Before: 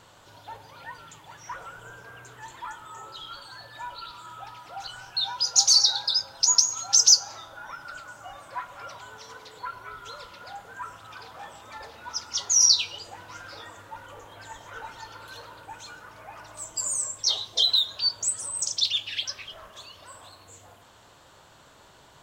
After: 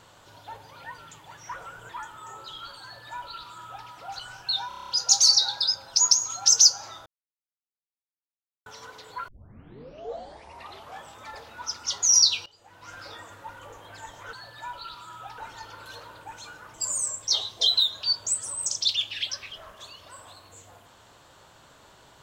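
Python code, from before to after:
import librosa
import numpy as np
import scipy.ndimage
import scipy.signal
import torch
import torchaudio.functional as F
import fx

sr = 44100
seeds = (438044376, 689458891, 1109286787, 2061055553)

y = fx.edit(x, sr, fx.cut(start_s=1.89, length_s=0.68),
    fx.duplicate(start_s=3.5, length_s=1.05, to_s=14.8),
    fx.stutter(start_s=5.36, slice_s=0.03, count=8),
    fx.silence(start_s=7.53, length_s=1.6),
    fx.tape_start(start_s=9.75, length_s=1.75),
    fx.fade_in_from(start_s=12.93, length_s=0.49, curve='qua', floor_db=-19.0),
    fx.cut(start_s=16.16, length_s=0.54), tone=tone)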